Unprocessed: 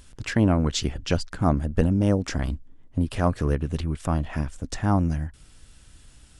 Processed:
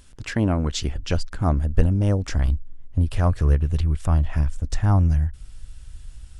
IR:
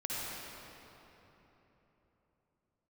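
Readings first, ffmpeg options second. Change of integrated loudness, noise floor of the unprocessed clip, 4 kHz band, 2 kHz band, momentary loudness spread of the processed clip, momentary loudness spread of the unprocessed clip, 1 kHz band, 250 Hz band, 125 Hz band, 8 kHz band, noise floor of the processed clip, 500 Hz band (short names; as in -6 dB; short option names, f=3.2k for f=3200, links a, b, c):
+2.5 dB, -52 dBFS, -1.0 dB, -1.0 dB, 8 LU, 10 LU, -1.5 dB, -2.5 dB, +4.5 dB, -1.0 dB, -43 dBFS, -2.0 dB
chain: -af "asubboost=boost=6:cutoff=97,volume=-1dB"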